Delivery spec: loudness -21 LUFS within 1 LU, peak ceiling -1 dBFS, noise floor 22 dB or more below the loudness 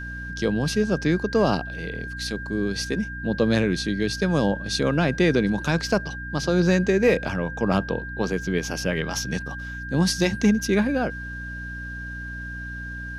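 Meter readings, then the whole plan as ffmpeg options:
hum 60 Hz; harmonics up to 300 Hz; hum level -34 dBFS; steady tone 1600 Hz; tone level -34 dBFS; loudness -24.5 LUFS; peak -8.0 dBFS; loudness target -21.0 LUFS
-> -af "bandreject=f=60:t=h:w=4,bandreject=f=120:t=h:w=4,bandreject=f=180:t=h:w=4,bandreject=f=240:t=h:w=4,bandreject=f=300:t=h:w=4"
-af "bandreject=f=1.6k:w=30"
-af "volume=3.5dB"

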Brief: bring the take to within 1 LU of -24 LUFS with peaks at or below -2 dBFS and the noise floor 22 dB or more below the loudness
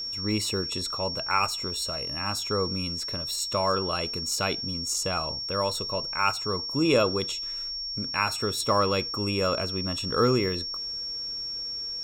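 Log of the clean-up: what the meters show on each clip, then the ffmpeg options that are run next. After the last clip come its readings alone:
steady tone 5500 Hz; tone level -31 dBFS; loudness -27.0 LUFS; peak -9.5 dBFS; loudness target -24.0 LUFS
-> -af "bandreject=f=5.5k:w=30"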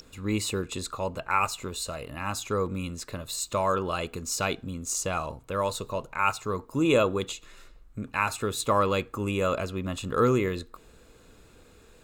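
steady tone none; loudness -28.5 LUFS; peak -10.5 dBFS; loudness target -24.0 LUFS
-> -af "volume=4.5dB"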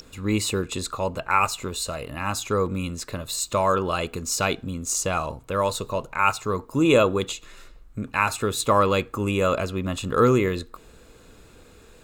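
loudness -24.0 LUFS; peak -6.0 dBFS; noise floor -51 dBFS

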